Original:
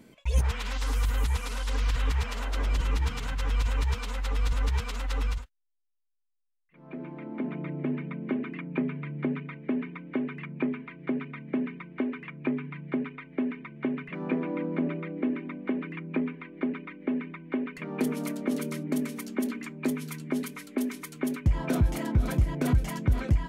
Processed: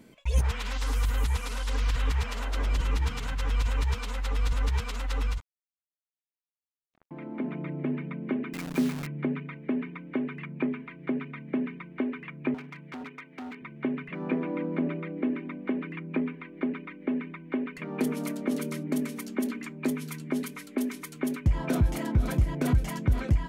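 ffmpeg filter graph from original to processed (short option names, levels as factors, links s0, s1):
-filter_complex "[0:a]asettb=1/sr,asplit=3[s0][s1][s2];[s0]atrim=end=5.404[s3];[s1]atrim=start=5.4:end=7.11,asetpts=PTS-STARTPTS,afade=t=in:d=0.004:c=qsin,afade=t=out:st=1.706:d=0.004:c=qsin,aecho=1:1:0.9:0.92,atrim=end_sample=75411,acrusher=bits=3:mix=0:aa=0.5[s4];[s2]atrim=start=7.106[s5];[s3][s4]acrossfade=d=0.004:c1=hsin:c2=qsin[s6];[s6][s5]acrossfade=d=0.004:c1=qsin:c2=hsin,asettb=1/sr,asplit=3[s7][s8][s9];[s7]atrim=end=8.534[s10];[s8]atrim=start=8.53:end=9.07,asetpts=PTS-STARTPTS,afade=t=in:d=0.004:c=qsin,afade=t=out:st=0.536:d=0.004:c=qsin,equalizer=f=250:t=o:w=0.26:g=4,acrusher=bits=7:dc=4:mix=0:aa=0.000001[s11];[s9]atrim=start=9.066[s12];[s10][s11]acrossfade=d=0.004:c1=hsin:c2=qsin[s13];[s13][s12]acrossfade=d=0.004:c1=qsin:c2=hsin,asettb=1/sr,asplit=3[s14][s15][s16];[s14]atrim=end=12.544[s17];[s15]atrim=start=12.54:end=13.62,asetpts=PTS-STARTPTS,afade=t=in:d=0.004:c=qsin,afade=t=out:st=1.076:d=0.004:c=qsin,volume=50.1,asoftclip=hard,volume=0.02,highpass=f=290:p=1[s18];[s16]atrim=start=13.616[s19];[s17][s18]acrossfade=d=0.004:c1=hsin:c2=qsin[s20];[s20][s19]acrossfade=d=0.004:c1=qsin:c2=hsin"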